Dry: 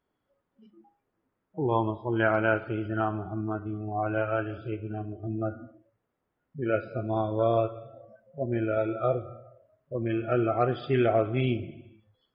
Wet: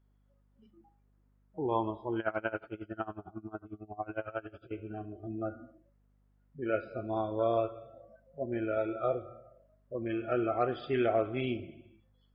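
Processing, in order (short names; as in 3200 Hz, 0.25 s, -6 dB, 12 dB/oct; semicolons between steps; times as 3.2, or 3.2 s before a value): bell 130 Hz -8 dB 1 oct; hum 50 Hz, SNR 34 dB; 2.19–4.71 dB-linear tremolo 11 Hz, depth 23 dB; gain -4 dB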